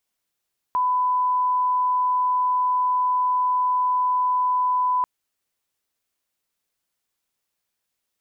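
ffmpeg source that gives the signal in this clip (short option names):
-f lavfi -i "sine=f=1000:d=4.29:r=44100,volume=0.06dB"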